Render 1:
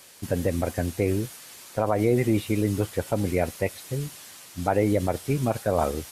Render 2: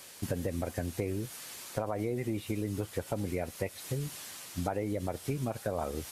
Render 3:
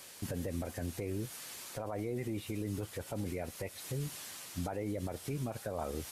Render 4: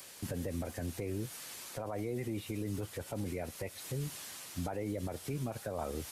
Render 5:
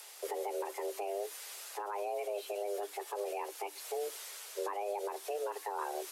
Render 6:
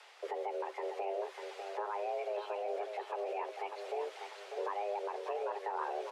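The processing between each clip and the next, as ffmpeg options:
ffmpeg -i in.wav -af "acompressor=threshold=-30dB:ratio=6" out.wav
ffmpeg -i in.wav -af "alimiter=level_in=2.5dB:limit=-24dB:level=0:latency=1:release=11,volume=-2.5dB,volume=-1.5dB" out.wav
ffmpeg -i in.wav -filter_complex "[0:a]acrossover=split=160|1400|2500[link_01][link_02][link_03][link_04];[link_04]acompressor=mode=upward:threshold=-53dB:ratio=2.5[link_05];[link_01][link_02][link_03][link_05]amix=inputs=4:normalize=0,asoftclip=type=hard:threshold=-28dB" out.wav
ffmpeg -i in.wav -af "afreqshift=300" out.wav
ffmpeg -i in.wav -af "highpass=430,lowpass=2800,aecho=1:1:597|1194|1791|2388|2985:0.473|0.203|0.0875|0.0376|0.0162,volume=1dB" out.wav

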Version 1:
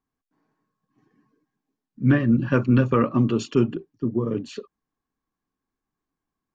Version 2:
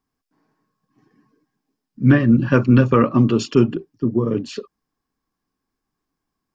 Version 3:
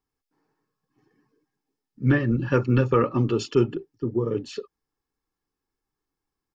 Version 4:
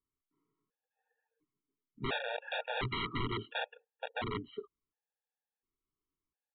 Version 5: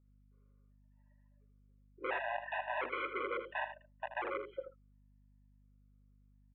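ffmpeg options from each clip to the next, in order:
ffmpeg -i in.wav -af "equalizer=frequency=5100:width=6.8:gain=8,volume=5dB" out.wav
ffmpeg -i in.wav -af "aecho=1:1:2.3:0.48,volume=-6dB" out.wav
ffmpeg -i in.wav -af "aresample=8000,aeval=exprs='(mod(8.91*val(0)+1,2)-1)/8.91':channel_layout=same,aresample=44100,afftfilt=real='re*gt(sin(2*PI*0.71*pts/sr)*(1-2*mod(floor(b*sr/1024/470),2)),0)':imag='im*gt(sin(2*PI*0.71*pts/sr)*(1-2*mod(floor(b*sr/1024/470),2)),0)':win_size=1024:overlap=0.75,volume=-8dB" out.wav
ffmpeg -i in.wav -af "highpass=frequency=230:width_type=q:width=0.5412,highpass=frequency=230:width_type=q:width=1.307,lowpass=frequency=2400:width_type=q:width=0.5176,lowpass=frequency=2400:width_type=q:width=0.7071,lowpass=frequency=2400:width_type=q:width=1.932,afreqshift=120,aeval=exprs='val(0)+0.000447*(sin(2*PI*50*n/s)+sin(2*PI*2*50*n/s)/2+sin(2*PI*3*50*n/s)/3+sin(2*PI*4*50*n/s)/4+sin(2*PI*5*50*n/s)/5)':channel_layout=same,aecho=1:1:80:0.316" out.wav

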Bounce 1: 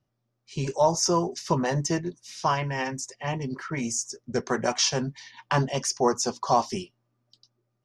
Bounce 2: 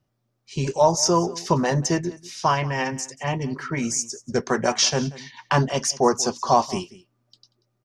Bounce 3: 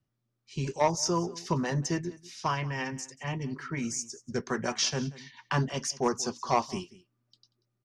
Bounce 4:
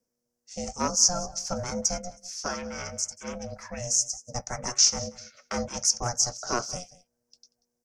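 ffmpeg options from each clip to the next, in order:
ffmpeg -i in.wav -af "aecho=1:1:186:0.106,volume=4dB" out.wav
ffmpeg -i in.wav -filter_complex "[0:a]highshelf=frequency=6200:gain=-5,acrossover=split=520|830[link_01][link_02][link_03];[link_02]acrusher=bits=2:mix=0:aa=0.5[link_04];[link_01][link_04][link_03]amix=inputs=3:normalize=0,volume=-6.5dB" out.wav
ffmpeg -i in.wav -af "aeval=exprs='val(0)*sin(2*PI*360*n/s)':channel_layout=same,highshelf=frequency=4500:width_type=q:width=3:gain=8.5" out.wav

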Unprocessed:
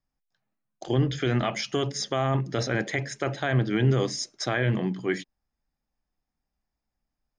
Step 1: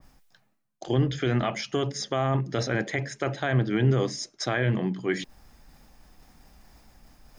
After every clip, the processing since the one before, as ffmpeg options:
ffmpeg -i in.wav -af "areverse,acompressor=mode=upward:threshold=-29dB:ratio=2.5,areverse,adynamicequalizer=threshold=0.0112:dfrequency=2100:dqfactor=0.7:tfrequency=2100:tqfactor=0.7:attack=5:release=100:ratio=0.375:range=2:mode=cutabove:tftype=highshelf" out.wav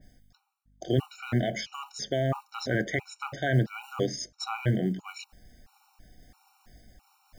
ffmpeg -i in.wav -af "aeval=exprs='val(0)+0.000891*(sin(2*PI*50*n/s)+sin(2*PI*2*50*n/s)/2+sin(2*PI*3*50*n/s)/3+sin(2*PI*4*50*n/s)/4+sin(2*PI*5*50*n/s)/5)':channel_layout=same,acrusher=bits=9:mode=log:mix=0:aa=0.000001,afftfilt=real='re*gt(sin(2*PI*1.5*pts/sr)*(1-2*mod(floor(b*sr/1024/750),2)),0)':imag='im*gt(sin(2*PI*1.5*pts/sr)*(1-2*mod(floor(b*sr/1024/750),2)),0)':win_size=1024:overlap=0.75" out.wav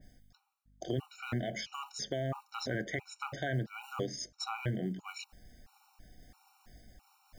ffmpeg -i in.wav -af "acompressor=threshold=-34dB:ratio=2,volume=-2dB" out.wav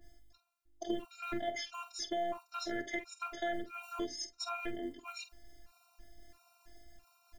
ffmpeg -i in.wav -filter_complex "[0:a]afftfilt=real='hypot(re,im)*cos(PI*b)':imag='0':win_size=512:overlap=0.75,asplit=2[link_01][link_02];[link_02]adelay=48,volume=-13dB[link_03];[link_01][link_03]amix=inputs=2:normalize=0,volume=2.5dB" out.wav

